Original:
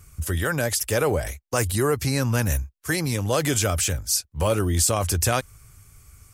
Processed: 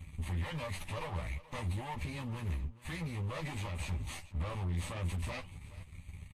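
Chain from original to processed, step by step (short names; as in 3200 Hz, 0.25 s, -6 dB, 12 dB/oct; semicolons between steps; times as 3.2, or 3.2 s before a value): minimum comb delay 0.48 ms; high shelf 7500 Hz -10.5 dB; sample leveller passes 3; limiter -25.5 dBFS, peak gain reduction 13.5 dB; flange 1.4 Hz, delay 3.2 ms, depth 5.5 ms, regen -87%; fixed phaser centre 1500 Hz, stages 6; one-sided clip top -46.5 dBFS, bottom -30.5 dBFS; Butterworth band-stop 700 Hz, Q 7.4; air absorption 57 m; doubler 12 ms -5 dB; echo 0.425 s -18 dB; gain +1 dB; Vorbis 32 kbps 44100 Hz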